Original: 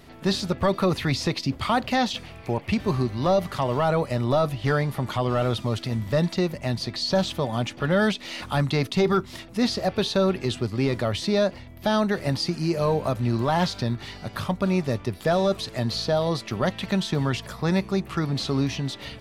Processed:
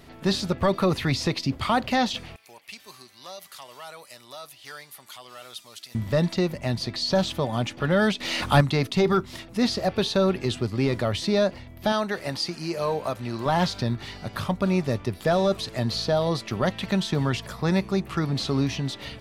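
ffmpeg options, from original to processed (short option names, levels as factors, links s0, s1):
-filter_complex "[0:a]asettb=1/sr,asplit=3[s0][s1][s2];[s0]atrim=end=2.364[s3];[s1]atrim=start=2.36:end=5.95,asetpts=PTS-STARTPTS,afade=t=in:d=0.004:c=qsin,afade=t=out:st=3.586:d=0.004:c=qsin,aderivative[s4];[s2]atrim=start=5.946[s5];[s3][s4]acrossfade=d=0.004:c1=hsin:c2=qsin[s6];[s6][s5]acrossfade=d=0.004:c1=qsin:c2=hsin,asettb=1/sr,asplit=3[s7][s8][s9];[s7]atrim=end=8.204[s10];[s8]atrim=start=8.2:end=8.61,asetpts=PTS-STARTPTS,afade=t=in:d=0.004:c=qsin,afade=t=out:st=0.406:d=0.004:c=qsin,acontrast=79[s11];[s9]atrim=start=8.606[s12];[s10][s11]acrossfade=d=0.004:c1=hsin:c2=qsin[s13];[s13][s12]acrossfade=d=0.004:c1=qsin:c2=hsin,asettb=1/sr,asplit=3[s14][s15][s16];[s14]atrim=end=11.924[s17];[s15]atrim=start=11.92:end=13.46,asetpts=PTS-STARTPTS,afade=t=in:d=0.004:c=qsin,afade=t=out:st=1.536:d=0.004:c=qsin,lowshelf=f=300:g=-11.5[s18];[s16]atrim=start=13.456[s19];[s17][s18]acrossfade=d=0.004:c1=hsin:c2=qsin[s20];[s20][s19]acrossfade=d=0.004:c1=qsin:c2=hsin"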